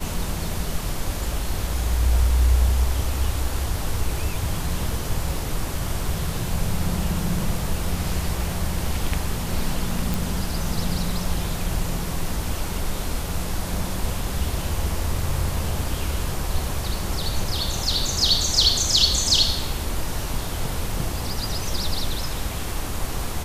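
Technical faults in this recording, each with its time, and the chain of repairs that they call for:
10.14 pop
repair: de-click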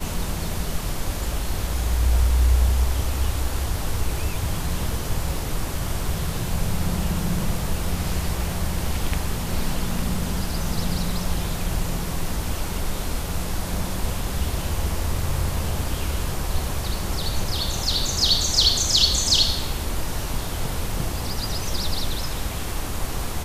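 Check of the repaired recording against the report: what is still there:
none

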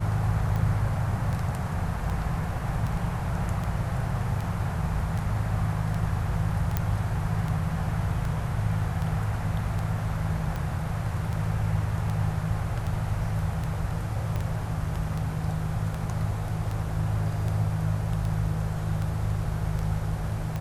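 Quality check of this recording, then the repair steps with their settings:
tick 78 rpm
6.77 pop -12 dBFS
14.36 pop -19 dBFS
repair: de-click

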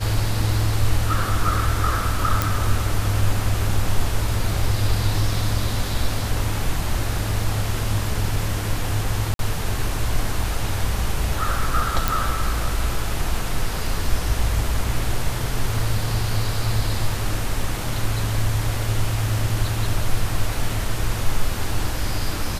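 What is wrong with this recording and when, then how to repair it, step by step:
2.42 pop
9.34–9.39 gap 52 ms
12.08 pop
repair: de-click; interpolate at 9.34, 52 ms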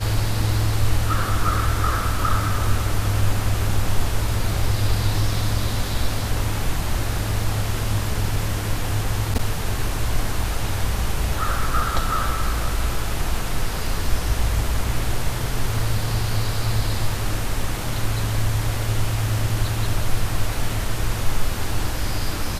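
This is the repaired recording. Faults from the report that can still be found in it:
none

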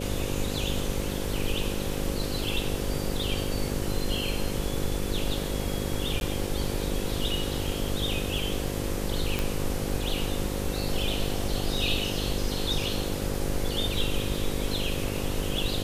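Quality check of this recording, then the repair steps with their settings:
buzz 50 Hz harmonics 11 -33 dBFS
6.2–6.21 gap 11 ms
9.39 pop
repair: de-click; de-hum 50 Hz, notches 11; interpolate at 6.2, 11 ms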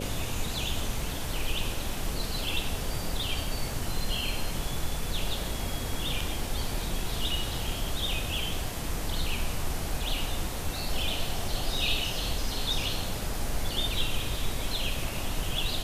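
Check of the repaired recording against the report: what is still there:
none

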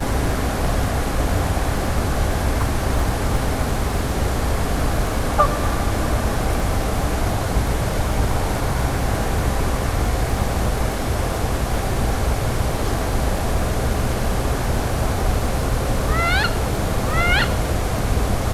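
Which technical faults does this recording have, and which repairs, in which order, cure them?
crackle 32/s -27 dBFS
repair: de-click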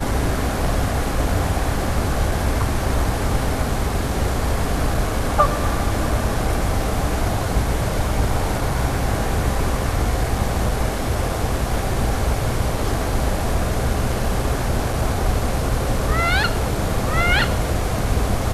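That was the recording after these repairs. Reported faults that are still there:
none

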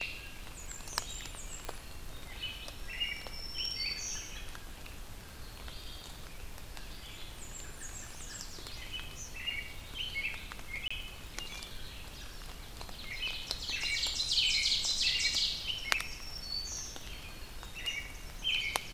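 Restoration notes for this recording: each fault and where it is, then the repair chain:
crackle 56/s -44 dBFS
1.65 pop -23 dBFS
10.88–10.9 gap 25 ms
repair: de-click; interpolate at 10.88, 25 ms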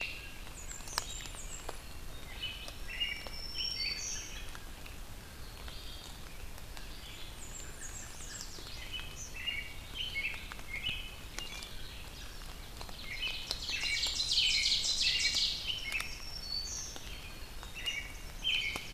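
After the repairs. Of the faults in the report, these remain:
none

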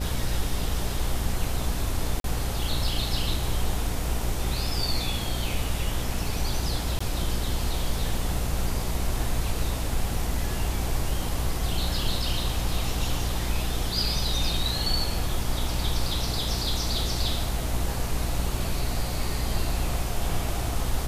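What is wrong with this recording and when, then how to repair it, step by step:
buzz 60 Hz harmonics 9 -31 dBFS
2.2–2.24 gap 42 ms
6.99–7 gap 15 ms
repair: de-hum 60 Hz, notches 9; interpolate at 2.2, 42 ms; interpolate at 6.99, 15 ms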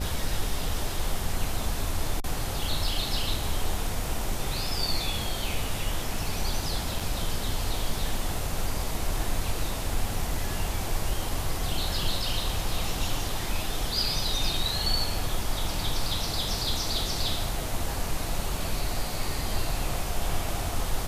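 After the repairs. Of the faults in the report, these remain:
none

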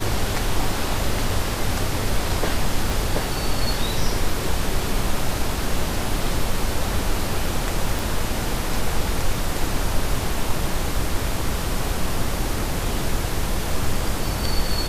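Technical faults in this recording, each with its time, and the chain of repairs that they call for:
2.9 pop
7.99 pop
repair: de-click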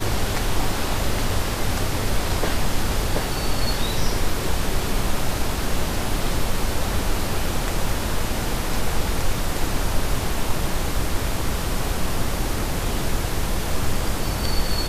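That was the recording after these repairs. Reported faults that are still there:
2.9 pop

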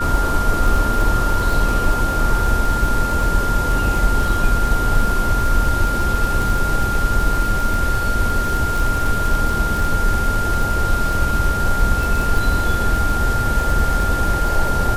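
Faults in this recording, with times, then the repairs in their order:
crackle 41/s -21 dBFS
tone 1400 Hz -21 dBFS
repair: de-click; notch 1400 Hz, Q 30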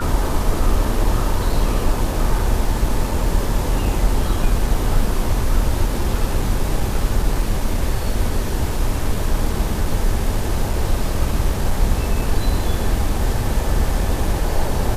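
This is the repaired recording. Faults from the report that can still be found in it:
none

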